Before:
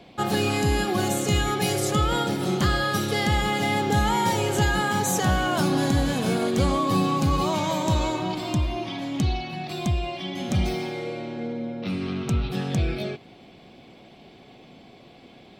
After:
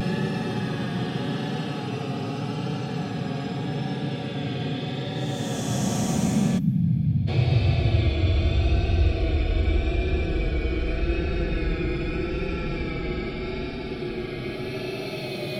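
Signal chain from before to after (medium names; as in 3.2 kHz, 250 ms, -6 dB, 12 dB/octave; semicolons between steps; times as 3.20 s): Paulstretch 38×, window 0.05 s, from 12.59 s; time-frequency box 6.59–7.27 s, 310–11000 Hz -22 dB; vibrato 0.82 Hz 41 cents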